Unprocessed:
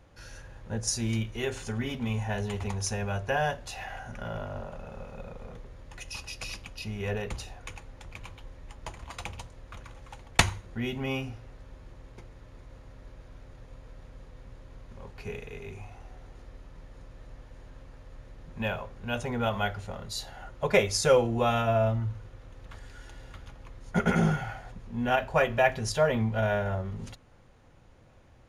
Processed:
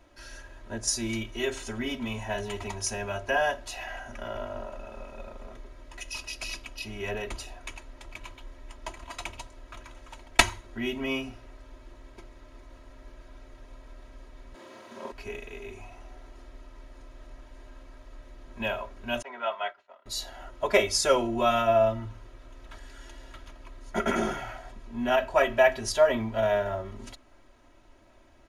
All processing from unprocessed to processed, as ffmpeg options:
-filter_complex "[0:a]asettb=1/sr,asplit=3[a][b][c];[a]atrim=end=14.544[d];[b]atrim=start=14.54:end=15.12,asetpts=PTS-STARTPTS,afade=t=in:d=0.004:c=qsin,afade=t=out:st=0.576:d=0.004:c=qsin,highpass=f=160:w=0.5412,highpass=f=160:w=1.3066,acontrast=65,asplit=2[e][f];[f]adelay=47,volume=-2.5dB[g];[e][g]amix=inputs=2:normalize=0,atrim=end_sample=25578[h];[c]atrim=start=15.116[i];[d][h]acrossfade=d=0.004:c1=hsin:c2=qsin[j];[j][i]acrossfade=d=0.004:c1=qsin:c2=hsin,asettb=1/sr,asplit=3[k][l][m];[k]atrim=end=19.224[n];[l]atrim=start=19.22:end=20.06,asetpts=PTS-STARTPTS,afade=t=in:d=0.004:c=qsin,afade=t=out:st=0.836:d=0.004:c=qsin,aemphasis=mode=reproduction:type=75fm,agate=range=-33dB:threshold=-29dB:ratio=3:release=100:detection=peak,highpass=720,lowpass=5k[o];[m]atrim=start=20.056[p];[n][o]acrossfade=d=0.004:c1=hsin:c2=qsin[q];[q][p]acrossfade=d=0.004:c1=qsin:c2=hsin,equalizer=f=79:t=o:w=1.8:g=-10,aecho=1:1:3.1:0.88"

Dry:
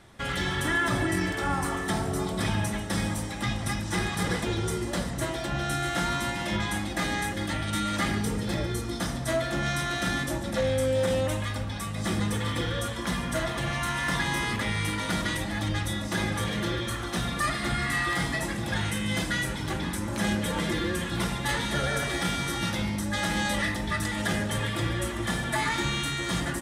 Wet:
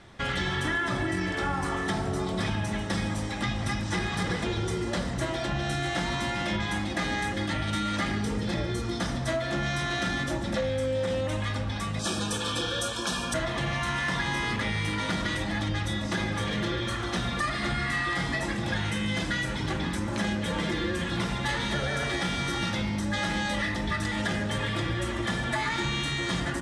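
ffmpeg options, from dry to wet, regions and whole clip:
-filter_complex "[0:a]asettb=1/sr,asplit=3[a][b][c];[a]atrim=end=11.994[d];[b]atrim=start=11.99:end=13.34,asetpts=PTS-STARTPTS,afade=t=in:d=0.004:c=qsin,afade=t=out:st=1.346:d=0.004:c=qsin,asuperstop=centerf=2000:order=12:qfactor=4.8,bass=f=250:g=-8,treble=f=4k:g=10[e];[c]atrim=start=13.336[f];[d][e]acrossfade=d=0.004:c1=hsin:c2=qsin[g];[g][f]acrossfade=d=0.004:c1=qsin:c2=hsin,lowpass=6.3k,bandreject=f=55.97:t=h:w=4,bandreject=f=111.94:t=h:w=4,bandreject=f=167.91:t=h:w=4,bandreject=f=223.88:t=h:w=4,bandreject=f=279.85:t=h:w=4,bandreject=f=335.82:t=h:w=4,bandreject=f=391.79:t=h:w=4,bandreject=f=447.76:t=h:w=4,bandreject=f=503.73:t=h:w=4,bandreject=f=559.7:t=h:w=4,bandreject=f=615.67:t=h:w=4,bandreject=f=671.64:t=h:w=4,bandreject=f=727.61:t=h:w=4,bandreject=f=783.58:t=h:w=4,bandreject=f=839.55:t=h:w=4,bandreject=f=895.52:t=h:w=4,bandreject=f=951.49:t=h:w=4,bandreject=f=1.00746k:t=h:w=4,bandreject=f=1.06343k:t=h:w=4,bandreject=f=1.1194k:t=h:w=4,bandreject=f=1.17537k:t=h:w=4,bandreject=f=1.23134k:t=h:w=4,bandreject=f=1.28731k:t=h:w=4,bandreject=f=1.34328k:t=h:w=4,bandreject=f=1.39925k:t=h:w=4,bandreject=f=1.45522k:t=h:w=4,bandreject=f=1.51119k:t=h:w=4,bandreject=f=1.56716k:t=h:w=4,acompressor=threshold=-28dB:ratio=6,volume=3dB"

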